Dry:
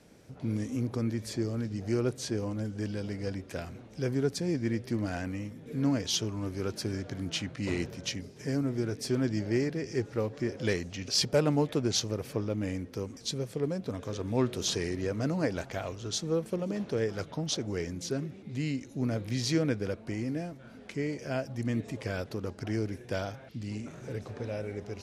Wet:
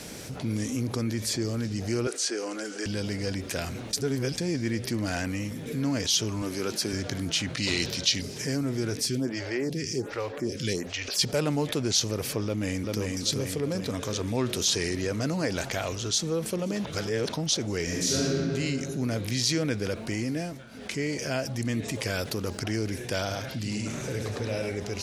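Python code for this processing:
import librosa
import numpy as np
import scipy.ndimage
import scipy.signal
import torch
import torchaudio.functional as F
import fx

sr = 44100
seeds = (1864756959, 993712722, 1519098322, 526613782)

y = fx.cabinet(x, sr, low_hz=340.0, low_slope=24, high_hz=9800.0, hz=(570.0, 950.0, 1400.0, 3600.0), db=(-5, -6, 5, -5), at=(2.07, 2.86))
y = fx.highpass(y, sr, hz=170.0, slope=12, at=(6.42, 6.93))
y = fx.peak_eq(y, sr, hz=4000.0, db=12.0, octaves=1.1, at=(7.57, 8.22))
y = fx.stagger_phaser(y, sr, hz=1.3, at=(9.05, 11.18), fade=0.02)
y = fx.echo_throw(y, sr, start_s=12.44, length_s=0.58, ms=390, feedback_pct=55, wet_db=-4.0)
y = fx.reverb_throw(y, sr, start_s=17.84, length_s=0.48, rt60_s=2.1, drr_db=-7.5)
y = fx.high_shelf(y, sr, hz=11000.0, db=7.5, at=(21.96, 22.58))
y = fx.echo_single(y, sr, ms=101, db=-4.5, at=(23.3, 24.69), fade=0.02)
y = fx.edit(y, sr, fx.reverse_span(start_s=3.93, length_s=0.45),
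    fx.reverse_span(start_s=16.85, length_s=0.48),
    fx.fade_down_up(start_s=20.37, length_s=0.62, db=-23.0, fade_s=0.28), tone=tone)
y = fx.high_shelf(y, sr, hz=2300.0, db=11.0)
y = fx.env_flatten(y, sr, amount_pct=50)
y = F.gain(torch.from_numpy(y), -6.0).numpy()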